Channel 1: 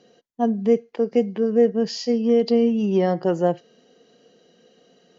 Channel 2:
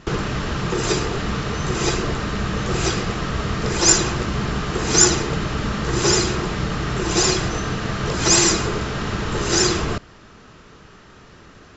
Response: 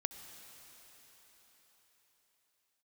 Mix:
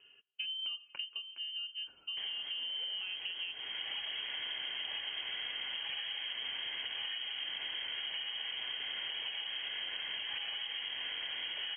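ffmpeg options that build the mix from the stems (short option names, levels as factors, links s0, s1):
-filter_complex "[0:a]alimiter=limit=0.211:level=0:latency=1:release=288,volume=1.19,afade=t=out:st=0.96:d=0.24:silence=0.266073,afade=t=in:st=2:d=0.66:silence=0.398107,asplit=3[s0][s1][s2];[s1]volume=0.15[s3];[1:a]bandreject=f=2000:w=11,adelay=2100,volume=0.398,asplit=2[s4][s5];[s5]volume=0.158[s6];[s2]apad=whole_len=611597[s7];[s4][s7]sidechaincompress=threshold=0.00501:ratio=8:attack=16:release=507[s8];[2:a]atrim=start_sample=2205[s9];[s3][s6]amix=inputs=2:normalize=0[s10];[s10][s9]afir=irnorm=-1:irlink=0[s11];[s0][s8][s11]amix=inputs=3:normalize=0,acrossover=split=180|2200[s12][s13][s14];[s12]acompressor=threshold=0.0126:ratio=4[s15];[s13]acompressor=threshold=0.0158:ratio=4[s16];[s14]acompressor=threshold=0.00398:ratio=4[s17];[s15][s16][s17]amix=inputs=3:normalize=0,lowpass=f=2800:t=q:w=0.5098,lowpass=f=2800:t=q:w=0.6013,lowpass=f=2800:t=q:w=0.9,lowpass=f=2800:t=q:w=2.563,afreqshift=-3300,acompressor=threshold=0.0141:ratio=4"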